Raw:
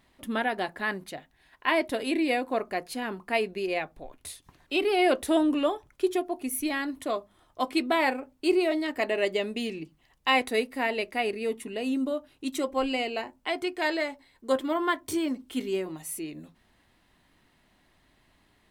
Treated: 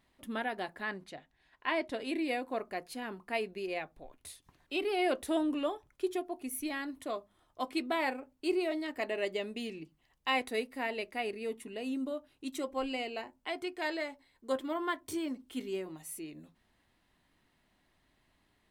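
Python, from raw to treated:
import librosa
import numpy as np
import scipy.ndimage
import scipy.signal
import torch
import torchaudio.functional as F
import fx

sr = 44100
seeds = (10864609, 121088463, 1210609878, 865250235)

y = fx.lowpass(x, sr, hz=7400.0, slope=12, at=(0.83, 2.09))
y = F.gain(torch.from_numpy(y), -7.5).numpy()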